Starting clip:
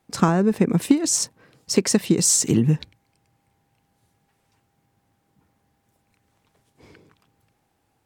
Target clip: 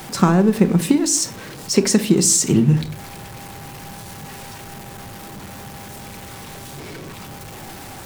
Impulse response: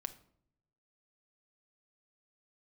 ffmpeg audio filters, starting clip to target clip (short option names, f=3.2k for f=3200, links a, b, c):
-filter_complex "[0:a]aeval=exprs='val(0)+0.5*0.0251*sgn(val(0))':c=same[a];[1:a]atrim=start_sample=2205,afade=t=out:st=0.31:d=0.01,atrim=end_sample=14112,asetrate=48510,aresample=44100[b];[a][b]afir=irnorm=-1:irlink=0,volume=5dB"